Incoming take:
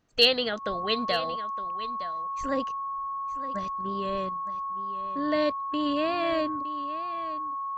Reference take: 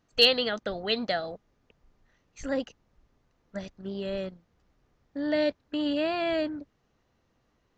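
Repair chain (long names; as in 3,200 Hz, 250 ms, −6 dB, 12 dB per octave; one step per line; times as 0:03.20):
notch filter 1,100 Hz, Q 30
echo removal 914 ms −13.5 dB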